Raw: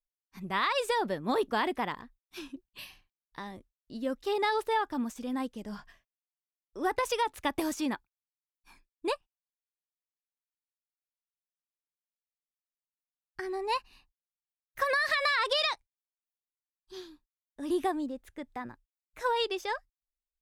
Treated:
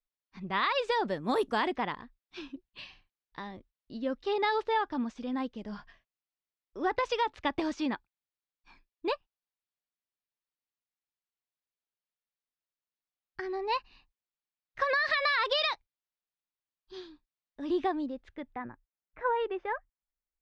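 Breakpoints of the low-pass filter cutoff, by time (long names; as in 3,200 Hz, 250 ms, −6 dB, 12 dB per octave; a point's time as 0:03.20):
low-pass filter 24 dB per octave
0:00.81 4,800 Hz
0:01.41 12,000 Hz
0:01.82 4,900 Hz
0:18.29 4,900 Hz
0:18.70 2,100 Hz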